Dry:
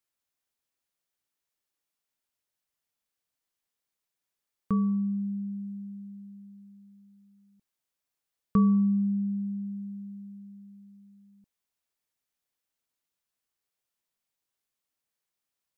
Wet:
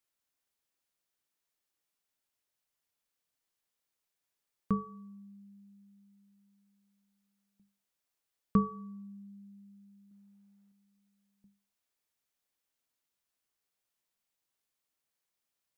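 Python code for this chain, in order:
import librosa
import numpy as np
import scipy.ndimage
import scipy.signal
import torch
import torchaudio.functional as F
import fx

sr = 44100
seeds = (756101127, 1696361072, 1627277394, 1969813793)

y = fx.hum_notches(x, sr, base_hz=50, count=4)
y = fx.peak_eq(y, sr, hz=600.0, db=8.5, octaves=2.5, at=(10.11, 10.72))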